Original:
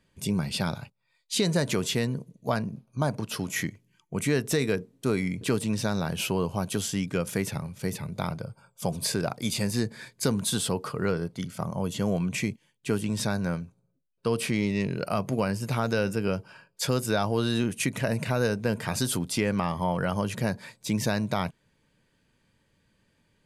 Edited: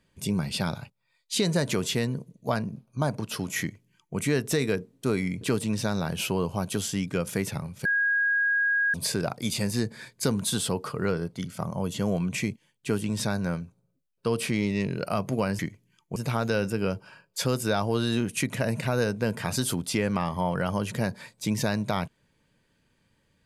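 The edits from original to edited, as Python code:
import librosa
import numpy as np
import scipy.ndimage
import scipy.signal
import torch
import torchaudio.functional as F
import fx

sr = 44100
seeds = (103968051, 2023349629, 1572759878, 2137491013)

y = fx.edit(x, sr, fx.duplicate(start_s=3.6, length_s=0.57, to_s=15.59),
    fx.bleep(start_s=7.85, length_s=1.09, hz=1640.0, db=-21.0), tone=tone)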